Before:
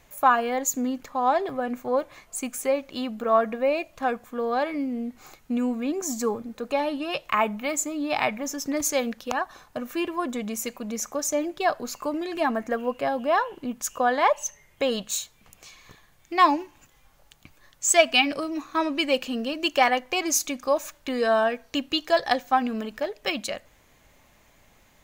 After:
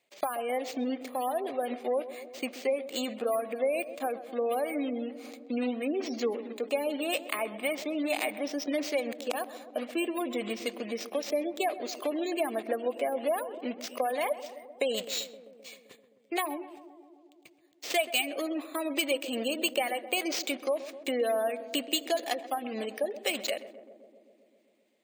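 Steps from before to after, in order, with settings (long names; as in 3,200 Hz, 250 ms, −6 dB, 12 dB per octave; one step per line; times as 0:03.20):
one scale factor per block 3 bits
noise gate −48 dBFS, range −16 dB
high-pass filter 360 Hz 12 dB per octave
bad sample-rate conversion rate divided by 4×, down filtered, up hold
downward compressor 4 to 1, threshold −28 dBFS, peak gain reduction 14 dB
gate on every frequency bin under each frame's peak −25 dB strong
flat-topped bell 1,200 Hz −9.5 dB 1.2 octaves
feedback echo with a low-pass in the loop 130 ms, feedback 79%, low-pass 1,100 Hz, level −13 dB
level +2.5 dB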